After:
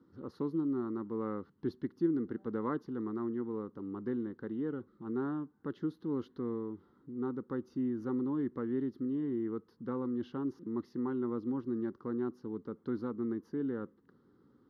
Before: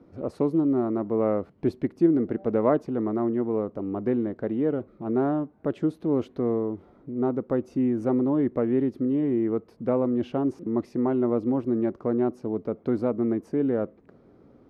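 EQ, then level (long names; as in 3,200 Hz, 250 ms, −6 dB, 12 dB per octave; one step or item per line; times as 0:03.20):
high-pass filter 180 Hz 6 dB per octave
phaser with its sweep stopped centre 2,400 Hz, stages 6
−6.0 dB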